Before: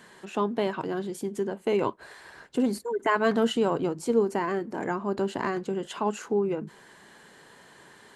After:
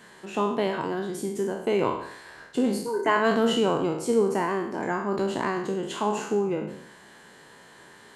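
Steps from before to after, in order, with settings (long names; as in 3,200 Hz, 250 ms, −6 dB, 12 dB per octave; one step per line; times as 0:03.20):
peak hold with a decay on every bin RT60 0.69 s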